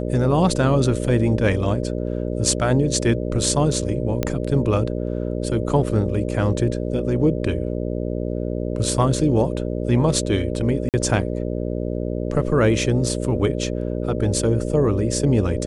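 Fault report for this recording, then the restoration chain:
buzz 60 Hz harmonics 10 -25 dBFS
4.23 pop -8 dBFS
10.89–10.94 gap 48 ms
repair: de-click; de-hum 60 Hz, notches 10; interpolate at 10.89, 48 ms

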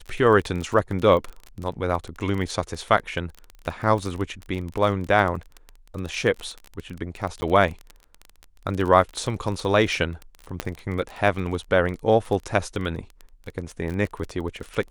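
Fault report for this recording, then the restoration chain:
crackle 25/s -28 dBFS
7.41–7.42 gap 10 ms
10.6 pop -10 dBFS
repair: de-click; interpolate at 7.41, 10 ms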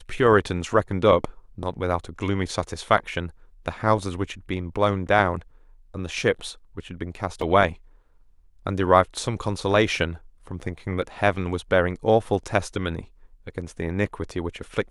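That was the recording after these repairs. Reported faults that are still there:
10.6 pop

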